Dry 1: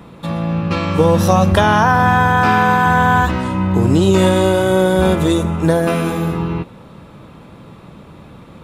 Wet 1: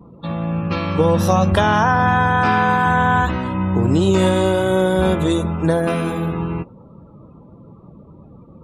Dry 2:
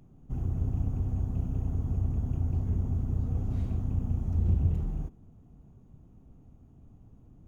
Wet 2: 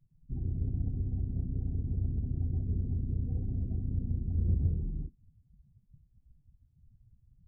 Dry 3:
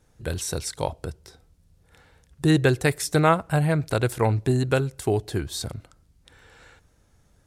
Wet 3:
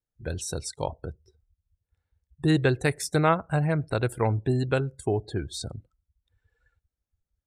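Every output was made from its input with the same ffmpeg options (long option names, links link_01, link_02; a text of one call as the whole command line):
ffmpeg -i in.wav -af "afftdn=noise_reduction=28:noise_floor=-39,volume=-3dB" out.wav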